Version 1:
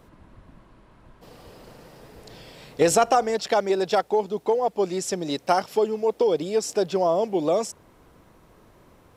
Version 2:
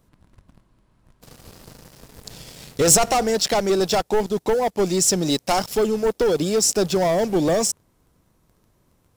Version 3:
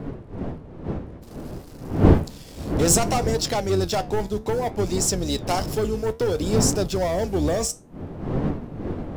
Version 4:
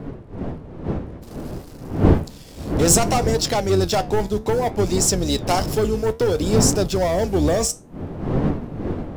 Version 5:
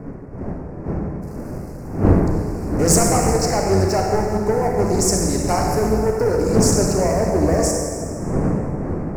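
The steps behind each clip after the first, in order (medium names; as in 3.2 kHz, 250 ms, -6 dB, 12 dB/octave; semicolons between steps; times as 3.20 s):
bass shelf 220 Hz -6 dB; waveshaping leveller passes 3; tone controls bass +12 dB, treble +10 dB; trim -6.5 dB
octave divider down 2 oct, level -1 dB; wind noise 290 Hz -23 dBFS; flange 0.59 Hz, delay 6.3 ms, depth 9.5 ms, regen +73%
level rider gain up to 4 dB
Butterworth band-stop 3.4 kHz, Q 1.2; reverberation RT60 2.3 s, pre-delay 27 ms, DRR 0 dB; loudspeaker Doppler distortion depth 0.36 ms; trim -1 dB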